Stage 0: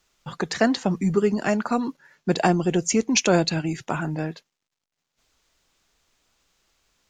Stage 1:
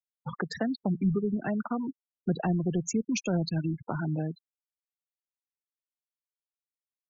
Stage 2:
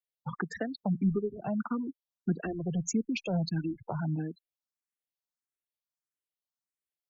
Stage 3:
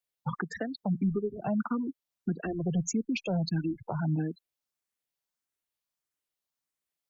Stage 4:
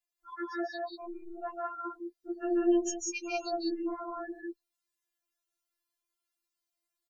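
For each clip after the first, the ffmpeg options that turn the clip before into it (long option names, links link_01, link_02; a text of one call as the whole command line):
ffmpeg -i in.wav -filter_complex "[0:a]acrossover=split=180[link_01][link_02];[link_02]acompressor=threshold=-32dB:ratio=4[link_03];[link_01][link_03]amix=inputs=2:normalize=0,afftfilt=real='re*gte(hypot(re,im),0.0355)':imag='im*gte(hypot(re,im),0.0355)':win_size=1024:overlap=0.75" out.wav
ffmpeg -i in.wav -filter_complex "[0:a]asplit=2[link_01][link_02];[link_02]afreqshift=1.6[link_03];[link_01][link_03]amix=inputs=2:normalize=1" out.wav
ffmpeg -i in.wav -af "alimiter=level_in=1.5dB:limit=-24dB:level=0:latency=1:release=397,volume=-1.5dB,volume=4.5dB" out.wav
ffmpeg -i in.wav -af "aecho=1:1:148.7|186.6:0.708|0.891,afftfilt=real='re*4*eq(mod(b,16),0)':imag='im*4*eq(mod(b,16),0)':win_size=2048:overlap=0.75" out.wav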